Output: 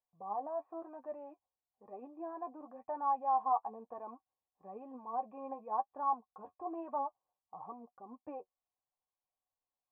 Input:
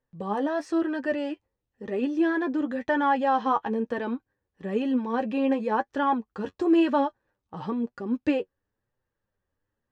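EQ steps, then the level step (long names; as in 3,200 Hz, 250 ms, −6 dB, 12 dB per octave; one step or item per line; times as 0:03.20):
formant resonators in series a
high-frequency loss of the air 170 metres
+1.0 dB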